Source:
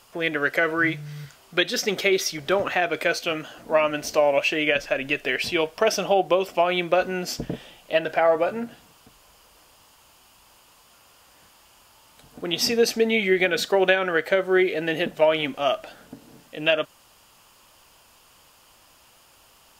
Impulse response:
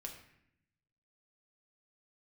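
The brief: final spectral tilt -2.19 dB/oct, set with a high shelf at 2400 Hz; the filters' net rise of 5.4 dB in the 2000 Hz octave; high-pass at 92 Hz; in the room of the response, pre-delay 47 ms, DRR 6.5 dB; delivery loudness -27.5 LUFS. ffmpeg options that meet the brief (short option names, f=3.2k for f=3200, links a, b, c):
-filter_complex "[0:a]highpass=92,equalizer=f=2k:t=o:g=3.5,highshelf=f=2.4k:g=6.5,asplit=2[a][b];[1:a]atrim=start_sample=2205,adelay=47[c];[b][c]afir=irnorm=-1:irlink=0,volume=-3dB[d];[a][d]amix=inputs=2:normalize=0,volume=-8.5dB"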